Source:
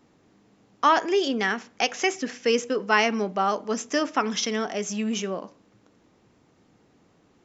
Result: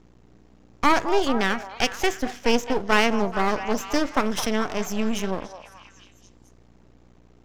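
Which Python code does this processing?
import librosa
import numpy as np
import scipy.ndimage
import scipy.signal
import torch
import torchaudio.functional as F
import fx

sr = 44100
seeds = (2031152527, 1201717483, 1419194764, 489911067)

y = fx.low_shelf(x, sr, hz=350.0, db=6.5)
y = fx.add_hum(y, sr, base_hz=60, snr_db=30)
y = np.maximum(y, 0.0)
y = fx.echo_stepped(y, sr, ms=215, hz=770.0, octaves=0.7, feedback_pct=70, wet_db=-8)
y = y * librosa.db_to_amplitude(2.5)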